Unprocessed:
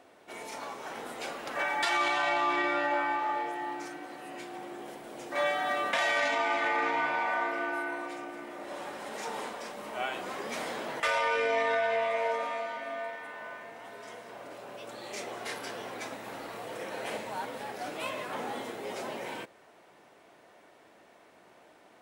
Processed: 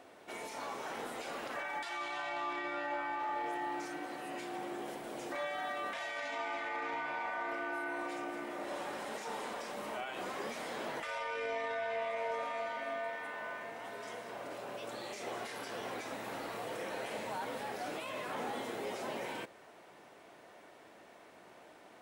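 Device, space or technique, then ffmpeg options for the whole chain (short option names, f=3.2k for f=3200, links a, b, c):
de-esser from a sidechain: -filter_complex "[0:a]asplit=2[a][b];[b]highpass=f=6.2k:p=1,apad=whole_len=970675[c];[a][c]sidechaincompress=threshold=-49dB:ratio=5:attack=0.52:release=44,volume=1dB"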